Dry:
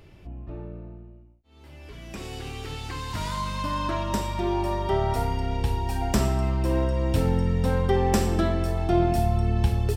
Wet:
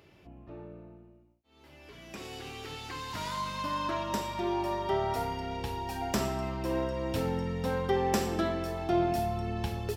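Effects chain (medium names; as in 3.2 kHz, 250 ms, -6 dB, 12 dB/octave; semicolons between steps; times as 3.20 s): high-pass 260 Hz 6 dB/octave; peaking EQ 8.6 kHz -6.5 dB 0.25 oct; trim -3 dB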